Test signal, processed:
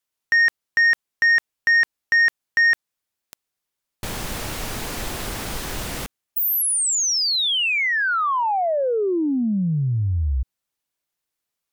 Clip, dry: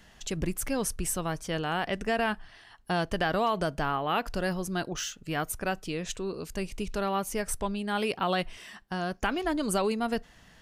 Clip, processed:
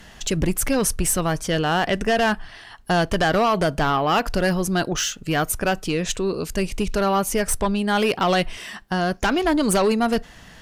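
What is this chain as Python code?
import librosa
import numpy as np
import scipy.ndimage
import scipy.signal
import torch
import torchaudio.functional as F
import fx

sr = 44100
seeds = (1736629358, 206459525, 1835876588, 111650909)

y = fx.fold_sine(x, sr, drive_db=7, ceiling_db=-13.5)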